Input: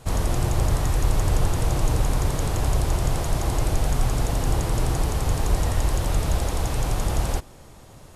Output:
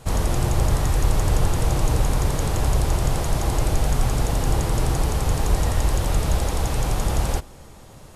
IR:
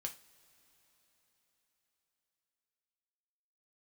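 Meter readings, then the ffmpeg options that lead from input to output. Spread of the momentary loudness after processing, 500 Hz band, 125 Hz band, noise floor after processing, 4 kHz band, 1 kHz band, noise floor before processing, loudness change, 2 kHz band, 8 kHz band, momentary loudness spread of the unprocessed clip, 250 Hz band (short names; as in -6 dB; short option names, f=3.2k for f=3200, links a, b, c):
2 LU, +2.0 dB, +1.5 dB, -44 dBFS, +2.0 dB, +2.0 dB, -47 dBFS, +1.5 dB, +2.0 dB, +2.0 dB, 2 LU, +2.0 dB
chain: -filter_complex "[0:a]asplit=2[a][b];[1:a]atrim=start_sample=2205,asetrate=66150,aresample=44100[c];[b][c]afir=irnorm=-1:irlink=0,volume=-5dB[d];[a][d]amix=inputs=2:normalize=0"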